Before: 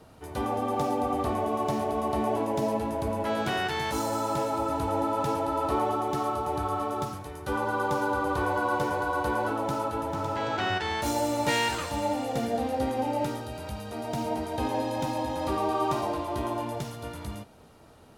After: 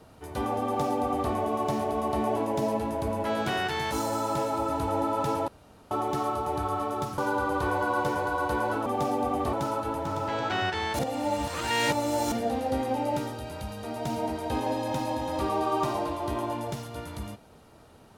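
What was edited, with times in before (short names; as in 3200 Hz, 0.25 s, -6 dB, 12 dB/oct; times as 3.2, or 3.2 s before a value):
0.65–1.32 copy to 9.61
5.48–5.91 room tone
7.18–7.93 cut
11.07–12.4 reverse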